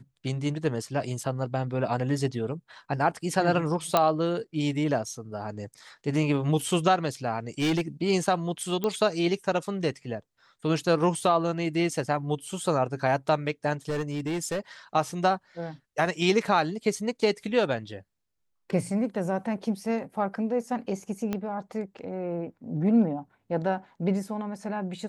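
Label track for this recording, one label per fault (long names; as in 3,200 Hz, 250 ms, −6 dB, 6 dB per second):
3.970000	3.970000	click −7 dBFS
7.600000	7.810000	clipping −21.5 dBFS
8.840000	8.840000	click −15 dBFS
13.890000	14.590000	clipping −25.5 dBFS
21.330000	21.330000	click −16 dBFS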